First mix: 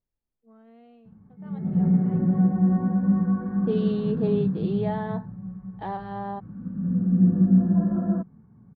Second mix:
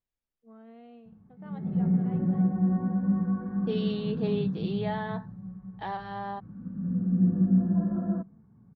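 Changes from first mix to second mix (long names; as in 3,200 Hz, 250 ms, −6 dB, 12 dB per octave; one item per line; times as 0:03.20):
second voice: add tilt shelving filter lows −7 dB, about 1,100 Hz
background −5.0 dB
reverb: on, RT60 0.85 s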